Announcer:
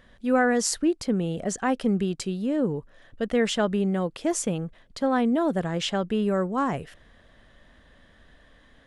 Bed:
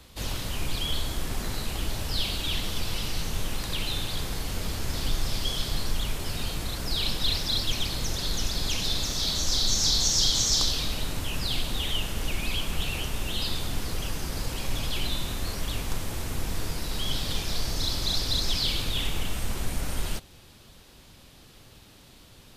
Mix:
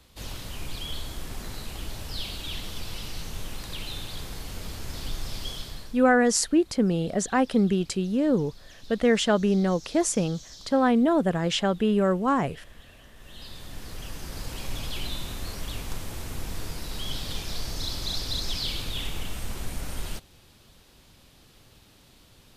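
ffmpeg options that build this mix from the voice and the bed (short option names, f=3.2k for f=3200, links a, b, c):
-filter_complex "[0:a]adelay=5700,volume=2dB[a];[1:a]volume=14dB,afade=t=out:st=5.49:d=0.53:silence=0.133352,afade=t=in:st=13.14:d=1.46:silence=0.105925[b];[a][b]amix=inputs=2:normalize=0"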